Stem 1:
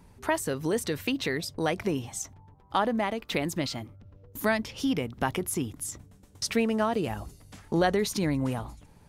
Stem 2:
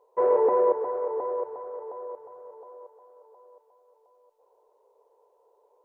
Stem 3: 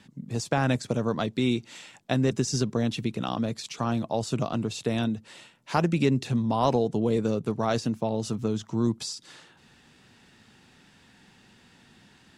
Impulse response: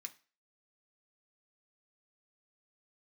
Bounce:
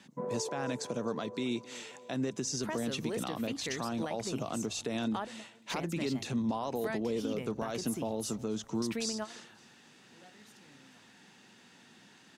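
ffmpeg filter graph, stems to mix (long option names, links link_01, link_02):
-filter_complex "[0:a]alimiter=limit=-16.5dB:level=0:latency=1:release=301,adelay=2400,volume=-7.5dB,asplit=2[link_01][link_02];[link_02]volume=-17.5dB[link_03];[1:a]volume=-16dB[link_04];[2:a]equalizer=frequency=6300:width_type=o:width=0.22:gain=5,alimiter=limit=-19.5dB:level=0:latency=1:release=101,highpass=190,volume=-1dB,asplit=3[link_05][link_06][link_07];[link_06]volume=-23dB[link_08];[link_07]apad=whole_len=506401[link_09];[link_01][link_09]sidechaingate=range=-33dB:threshold=-45dB:ratio=16:detection=peak[link_10];[3:a]atrim=start_sample=2205[link_11];[link_03][link_11]afir=irnorm=-1:irlink=0[link_12];[link_08]aecho=0:1:266|532|798|1064|1330:1|0.34|0.116|0.0393|0.0134[link_13];[link_10][link_04][link_05][link_12][link_13]amix=inputs=5:normalize=0,alimiter=limit=-24dB:level=0:latency=1:release=303"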